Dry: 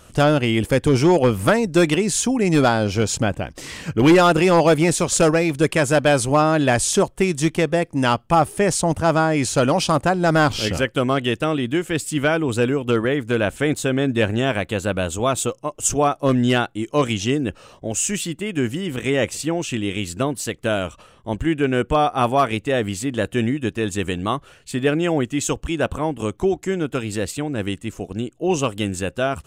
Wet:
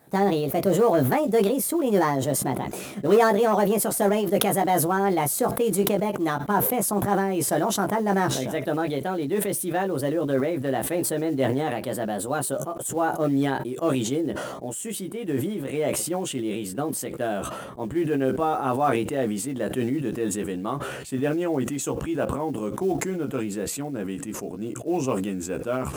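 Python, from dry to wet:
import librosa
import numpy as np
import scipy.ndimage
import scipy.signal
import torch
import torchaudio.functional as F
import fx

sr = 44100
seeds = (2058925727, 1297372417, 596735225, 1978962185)

y = fx.speed_glide(x, sr, from_pct=133, to_pct=94)
y = scipy.signal.sosfilt(scipy.signal.butter(2, 180.0, 'highpass', fs=sr, output='sos'), y)
y = fx.peak_eq(y, sr, hz=4100.0, db=-13.0, octaves=2.7)
y = fx.quant_float(y, sr, bits=4)
y = fx.doubler(y, sr, ms=15.0, db=-5.0)
y = fx.sustainer(y, sr, db_per_s=35.0)
y = y * librosa.db_to_amplitude(-5.0)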